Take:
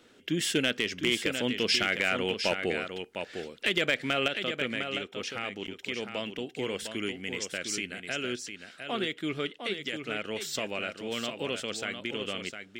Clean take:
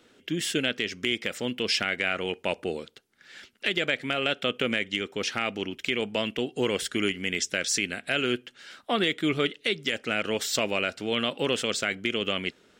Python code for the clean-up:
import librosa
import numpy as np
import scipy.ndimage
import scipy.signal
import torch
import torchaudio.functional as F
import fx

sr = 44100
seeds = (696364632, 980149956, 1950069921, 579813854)

y = fx.fix_declip(x, sr, threshold_db=-15.5)
y = fx.fix_interpolate(y, sr, at_s=(5.67,), length_ms=7.3)
y = fx.fix_echo_inverse(y, sr, delay_ms=705, level_db=-7.5)
y = fx.fix_level(y, sr, at_s=4.28, step_db=7.0)